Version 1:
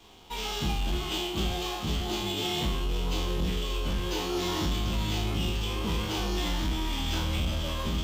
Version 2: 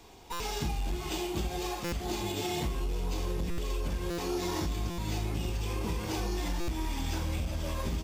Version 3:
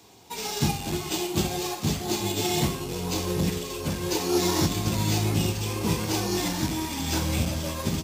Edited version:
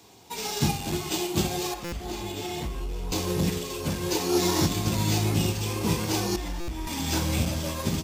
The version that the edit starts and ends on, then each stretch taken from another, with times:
3
0:01.74–0:03.12: punch in from 2
0:06.36–0:06.87: punch in from 2
not used: 1

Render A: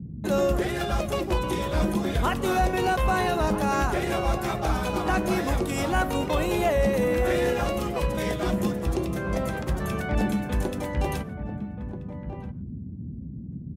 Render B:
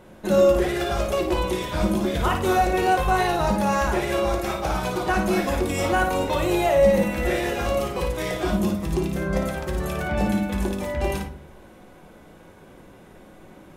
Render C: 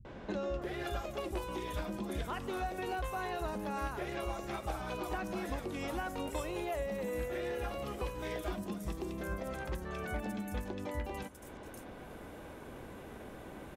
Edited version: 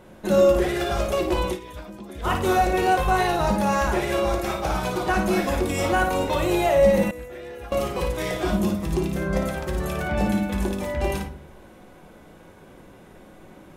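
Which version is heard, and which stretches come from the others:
B
0:01.55–0:02.25: punch in from C, crossfade 0.10 s
0:07.11–0:07.72: punch in from C
not used: A

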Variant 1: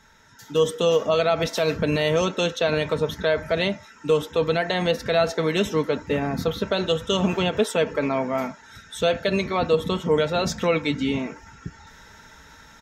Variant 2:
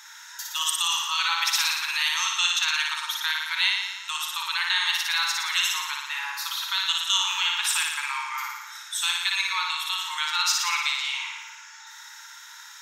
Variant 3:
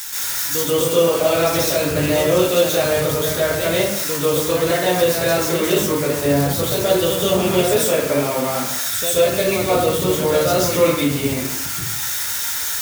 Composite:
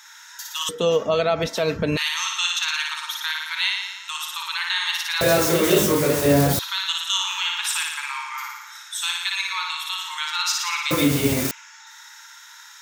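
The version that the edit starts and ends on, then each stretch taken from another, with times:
2
0:00.69–0:01.97: punch in from 1
0:05.21–0:06.59: punch in from 3
0:10.91–0:11.51: punch in from 3

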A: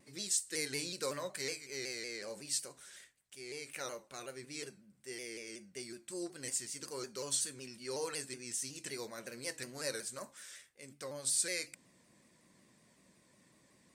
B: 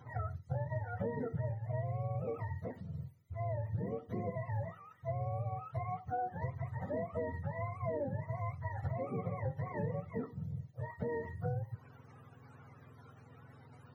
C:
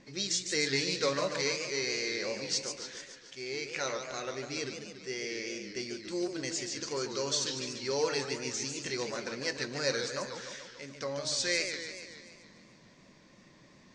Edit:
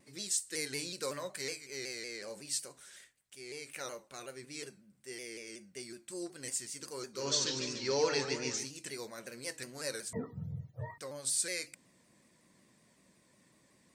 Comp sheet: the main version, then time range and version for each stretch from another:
A
0:07.21–0:08.63: punch in from C, crossfade 0.16 s
0:10.13–0:10.98: punch in from B

